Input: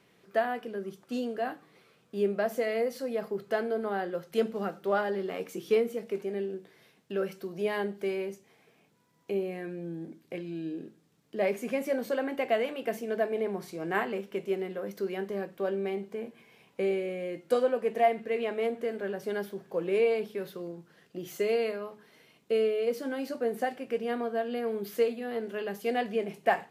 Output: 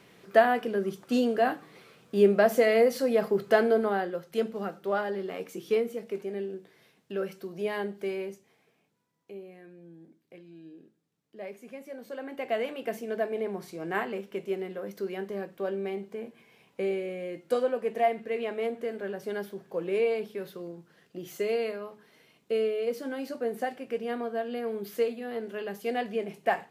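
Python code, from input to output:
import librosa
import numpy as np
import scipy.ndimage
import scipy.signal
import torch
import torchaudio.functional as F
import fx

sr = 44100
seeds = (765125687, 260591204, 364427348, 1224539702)

y = fx.gain(x, sr, db=fx.line((3.73, 7.5), (4.21, -1.0), (8.26, -1.0), (9.37, -12.5), (11.92, -12.5), (12.62, -1.0)))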